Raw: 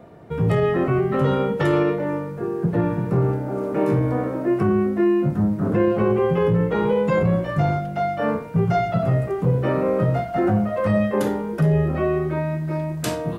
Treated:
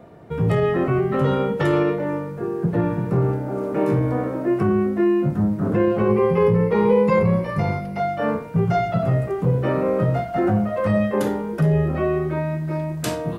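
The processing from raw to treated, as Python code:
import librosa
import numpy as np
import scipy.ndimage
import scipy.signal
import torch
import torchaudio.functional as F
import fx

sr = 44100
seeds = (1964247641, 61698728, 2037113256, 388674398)

y = fx.ripple_eq(x, sr, per_octave=0.88, db=9, at=(6.08, 8.0))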